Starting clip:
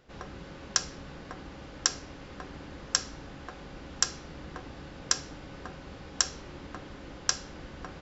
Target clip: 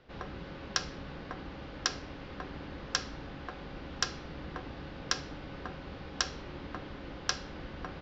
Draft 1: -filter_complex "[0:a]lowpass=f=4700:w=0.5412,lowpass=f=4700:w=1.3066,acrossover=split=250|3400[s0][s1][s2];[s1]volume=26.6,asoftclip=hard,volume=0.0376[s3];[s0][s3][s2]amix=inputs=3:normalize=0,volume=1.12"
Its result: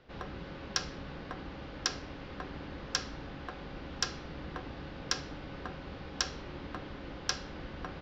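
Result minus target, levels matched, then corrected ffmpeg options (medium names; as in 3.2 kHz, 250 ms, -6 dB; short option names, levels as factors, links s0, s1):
overload inside the chain: distortion +9 dB
-filter_complex "[0:a]lowpass=f=4700:w=0.5412,lowpass=f=4700:w=1.3066,acrossover=split=250|3400[s0][s1][s2];[s1]volume=10.6,asoftclip=hard,volume=0.0944[s3];[s0][s3][s2]amix=inputs=3:normalize=0,volume=1.12"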